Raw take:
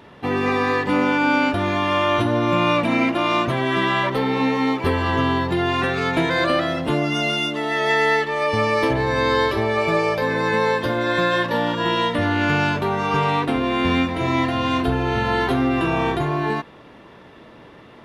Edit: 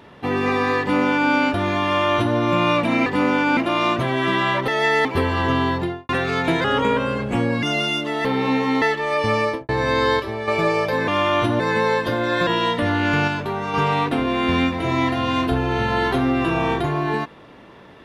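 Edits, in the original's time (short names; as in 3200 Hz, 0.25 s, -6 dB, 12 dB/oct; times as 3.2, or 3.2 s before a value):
0.8–1.31 copy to 3.06
1.84–2.36 copy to 10.37
4.17–4.74 swap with 7.74–8.11
5.43–5.78 studio fade out
6.33–7.12 speed 80%
8.7–8.98 studio fade out
9.49–9.77 gain -6.5 dB
11.24–11.83 cut
12.64–13.1 gain -3.5 dB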